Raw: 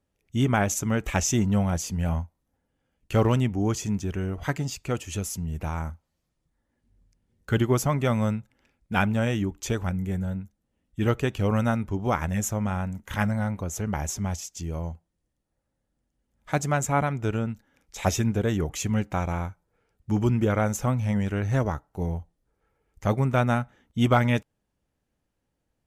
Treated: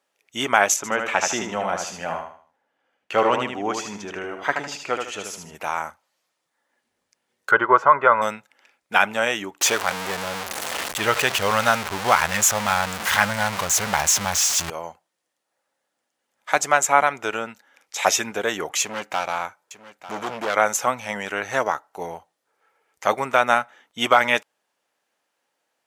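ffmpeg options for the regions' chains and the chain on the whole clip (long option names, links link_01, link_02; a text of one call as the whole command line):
ffmpeg -i in.wav -filter_complex "[0:a]asettb=1/sr,asplit=3[link_01][link_02][link_03];[link_01]atrim=end=0.764[link_04];[link_02]atrim=start=0.76:end=5.55,asetpts=PTS-STARTPTS,afade=type=in:duration=0.004:curve=qsin,afade=type=out:start_time=4.786:duration=0.004:curve=qsin,aemphasis=mode=reproduction:type=75kf,aecho=1:1:77|154|231|308:0.531|0.175|0.0578|0.0191,atrim=end_sample=211239[link_05];[link_03]atrim=start=5.546[link_06];[link_04][link_05]acrossfade=duration=0.004:curve1=hsin:curve2=qsin[link_07];[link_07][link_06]acrossfade=duration=0.004:curve1=qsin:curve2=hsin,asettb=1/sr,asplit=3[link_08][link_09][link_10];[link_08]atrim=end=7.514[link_11];[link_09]atrim=start=7.51:end=8.22,asetpts=PTS-STARTPTS,afade=type=in:duration=0.004:curve=qsin,afade=type=out:start_time=0.706:duration=0.004:curve=qsin,lowpass=frequency=1300:width_type=q:width=3.2,aecho=1:1:2:0.49,atrim=end_sample=31311[link_12];[link_10]atrim=start=8.216[link_13];[link_11][link_12]acrossfade=duration=0.004:curve1=hsin:curve2=qsin[link_14];[link_14][link_13]acrossfade=duration=0.004:curve1=qsin:curve2=hsin,asettb=1/sr,asplit=3[link_15][link_16][link_17];[link_15]atrim=end=9.614[link_18];[link_16]atrim=start=9.61:end=14.7,asetpts=PTS-STARTPTS,afade=type=in:duration=0.004:curve=qsin,afade=type=out:start_time=5.086:duration=0.004:curve=qsin,aeval=exprs='val(0)+0.5*0.0501*sgn(val(0))':channel_layout=same,asubboost=boost=9.5:cutoff=120[link_19];[link_17]atrim=start=14.696[link_20];[link_18][link_19]acrossfade=duration=0.004:curve1=hsin:curve2=qsin[link_21];[link_21][link_20]acrossfade=duration=0.004:curve1=qsin:curve2=hsin,asettb=1/sr,asplit=3[link_22][link_23][link_24];[link_22]atrim=end=18.814[link_25];[link_23]atrim=start=18.81:end=20.56,asetpts=PTS-STARTPTS,afade=type=in:duration=0.004:curve=qsin,afade=type=out:start_time=1.746:duration=0.004:curve=qsin,asoftclip=type=hard:threshold=-25dB,aecho=1:1:897:0.168,atrim=end_sample=77175[link_26];[link_24]atrim=start=20.556[link_27];[link_25][link_26]acrossfade=duration=0.004:curve1=hsin:curve2=qsin[link_28];[link_28][link_27]acrossfade=duration=0.004:curve1=qsin:curve2=hsin,highpass=730,highshelf=frequency=9600:gain=-6,alimiter=level_in=13dB:limit=-1dB:release=50:level=0:latency=1,volume=-1.5dB" out.wav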